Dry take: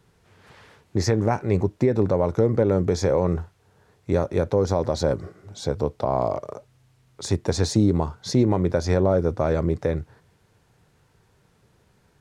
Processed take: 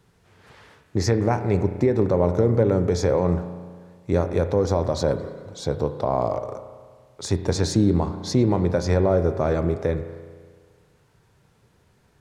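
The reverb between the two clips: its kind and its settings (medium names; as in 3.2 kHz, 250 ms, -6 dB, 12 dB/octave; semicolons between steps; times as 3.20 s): spring tank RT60 1.7 s, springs 34 ms, chirp 75 ms, DRR 9 dB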